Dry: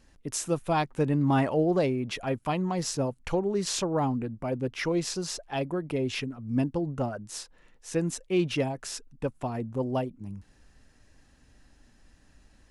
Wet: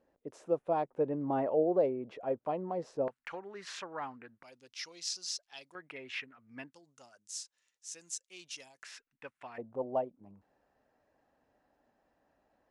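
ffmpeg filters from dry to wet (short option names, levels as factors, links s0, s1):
-af "asetnsamples=n=441:p=0,asendcmd='3.08 bandpass f 1700;4.43 bandpass f 5200;5.75 bandpass f 1900;6.73 bandpass f 6500;8.83 bandpass f 2000;9.58 bandpass f 670',bandpass=f=540:t=q:w=2:csg=0"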